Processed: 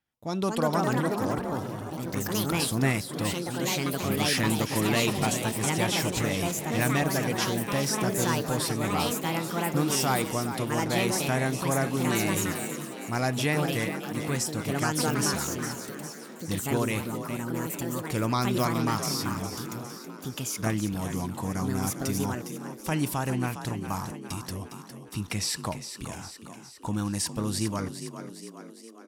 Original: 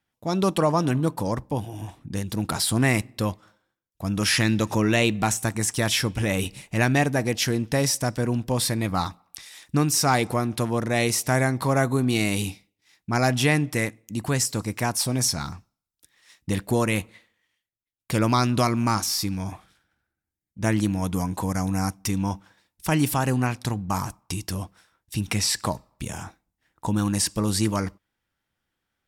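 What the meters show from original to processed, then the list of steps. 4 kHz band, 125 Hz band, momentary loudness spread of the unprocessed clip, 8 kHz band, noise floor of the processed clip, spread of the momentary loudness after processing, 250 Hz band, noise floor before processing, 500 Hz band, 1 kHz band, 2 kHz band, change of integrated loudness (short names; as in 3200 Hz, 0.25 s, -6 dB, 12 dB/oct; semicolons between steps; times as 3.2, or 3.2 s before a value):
-3.5 dB, -4.5 dB, 12 LU, -3.5 dB, -45 dBFS, 12 LU, -3.5 dB, -84 dBFS, -2.5 dB, -3.0 dB, -3.5 dB, -4.0 dB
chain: frequency-shifting echo 0.408 s, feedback 57%, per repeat +39 Hz, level -10 dB; echoes that change speed 0.284 s, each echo +4 st, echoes 2; gain -6 dB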